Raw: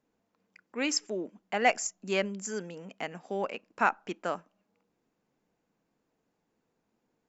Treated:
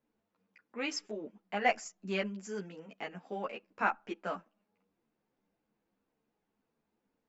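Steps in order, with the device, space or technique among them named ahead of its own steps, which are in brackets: string-machine ensemble chorus (three-phase chorus; low-pass 4.6 kHz 12 dB/octave); trim -1 dB

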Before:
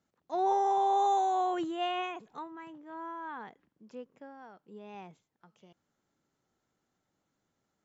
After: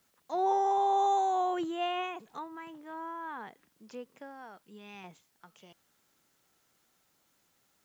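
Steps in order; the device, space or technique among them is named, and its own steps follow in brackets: 4.63–5.04 s: peaking EQ 620 Hz -12.5 dB 1.3 oct; noise-reduction cassette on a plain deck (tape noise reduction on one side only encoder only; wow and flutter 16 cents; white noise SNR 40 dB)

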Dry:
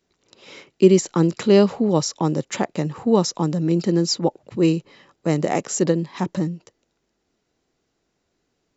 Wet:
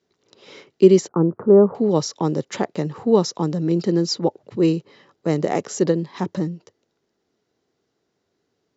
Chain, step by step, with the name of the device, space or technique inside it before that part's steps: car door speaker (cabinet simulation 100–6500 Hz, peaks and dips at 100 Hz +4 dB, 420 Hz +5 dB, 2.5 kHz -4 dB); 1.08–1.75 s: steep low-pass 1.3 kHz 36 dB/octave; trim -1 dB

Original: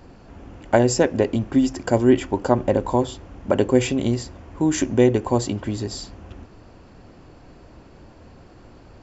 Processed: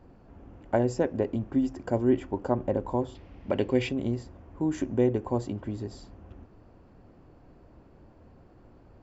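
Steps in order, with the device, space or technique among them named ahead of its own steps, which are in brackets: through cloth (treble shelf 2.2 kHz -13.5 dB); 3.15–3.89 s: high-order bell 3.2 kHz +10.5 dB; trim -7.5 dB

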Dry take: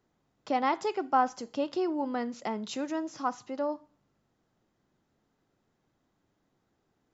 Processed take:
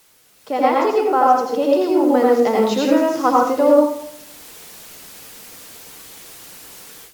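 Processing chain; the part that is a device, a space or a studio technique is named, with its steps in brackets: filmed off a television (band-pass 160–6600 Hz; peaking EQ 470 Hz +10 dB 0.29 oct; reverberation RT60 0.65 s, pre-delay 79 ms, DRR -3 dB; white noise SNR 27 dB; level rider gain up to 15 dB; AAC 96 kbps 48 kHz)

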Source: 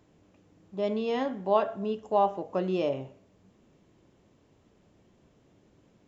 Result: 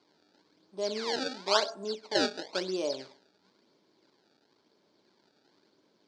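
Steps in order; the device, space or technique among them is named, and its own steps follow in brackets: circuit-bent sampling toy (decimation with a swept rate 24×, swing 160% 0.98 Hz; cabinet simulation 450–5600 Hz, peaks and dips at 510 Hz -6 dB, 730 Hz -8 dB, 1.2 kHz -7 dB, 1.9 kHz -7 dB, 2.7 kHz -9 dB, 4.5 kHz +8 dB); trim +3 dB

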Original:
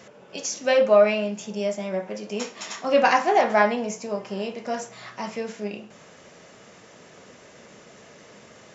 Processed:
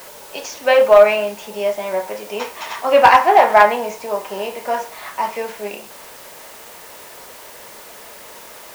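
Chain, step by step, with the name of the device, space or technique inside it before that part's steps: drive-through speaker (band-pass 450–3300 Hz; peaking EQ 930 Hz +8.5 dB 0.25 oct; hard clipper -10 dBFS, distortion -21 dB; white noise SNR 23 dB); trim +8 dB

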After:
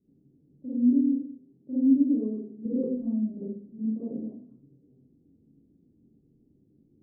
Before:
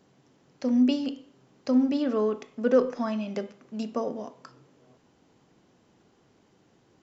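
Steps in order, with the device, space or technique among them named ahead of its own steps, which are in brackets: next room (low-pass 320 Hz 24 dB/octave; reverberation RT60 0.50 s, pre-delay 38 ms, DRR -11.5 dB); 0.65–2.66 s: high-pass 120 Hz 6 dB/octave; trim -9 dB

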